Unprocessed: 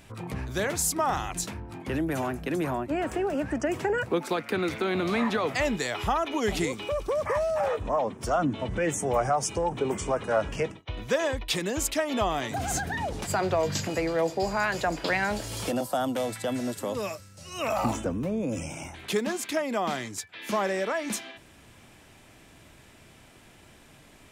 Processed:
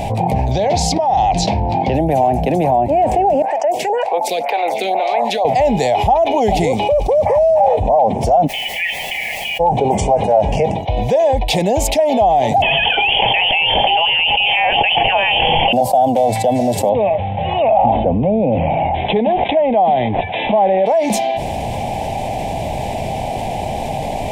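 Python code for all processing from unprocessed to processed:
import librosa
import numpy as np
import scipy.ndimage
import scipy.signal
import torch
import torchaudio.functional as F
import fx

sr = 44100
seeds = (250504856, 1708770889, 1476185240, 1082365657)

y = fx.chain(x, sr, fx.lowpass_res(hz=4600.0, q=2.0),
    fx.over_compress(threshold_db=-31.0, ratio=-1.0), at=(0.51, 1.95))
y = fx.chain(y, sr, fx.highpass(hz=720.0, slope=12),
    fx.stagger_phaser(hz=2.0), at=(3.42, 5.45))
y = fx.brickwall_bandpass(y, sr, low_hz=1700.0, high_hz=3500.0, at=(8.46, 9.59), fade=0.02)
y = fx.comb(y, sr, ms=4.8, depth=0.44, at=(8.46, 9.59), fade=0.02)
y = fx.dmg_noise_colour(y, sr, seeds[0], colour='white', level_db=-60.0, at=(8.46, 9.59), fade=0.02)
y = fx.chain(y, sr, fx.peak_eq(hz=65.0, db=-13.5, octaves=1.3),
    fx.freq_invert(carrier_hz=3300),
    fx.env_flatten(amount_pct=100), at=(12.62, 15.73))
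y = fx.chain(y, sr, fx.lowpass(hz=9100.0, slope=24),
    fx.resample_bad(factor=6, down='none', up='filtered'), at=(16.89, 20.86))
y = fx.curve_eq(y, sr, hz=(210.0, 330.0, 800.0, 1300.0, 2200.0, 8100.0), db=(0, -7, 14, -27, -6, -11))
y = fx.env_flatten(y, sr, amount_pct=70)
y = y * librosa.db_to_amplitude(2.5)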